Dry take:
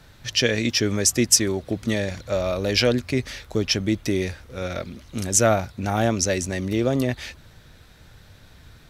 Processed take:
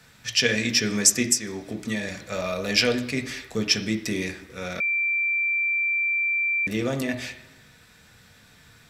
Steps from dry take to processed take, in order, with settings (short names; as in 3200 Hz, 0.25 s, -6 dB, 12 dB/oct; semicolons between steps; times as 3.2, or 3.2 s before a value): 1.22–2.05 compressor 6:1, threshold -22 dBFS, peak gain reduction 11.5 dB; reverb RT60 1.0 s, pre-delay 3 ms, DRR 4 dB; 4.8–6.67 bleep 2350 Hz -21 dBFS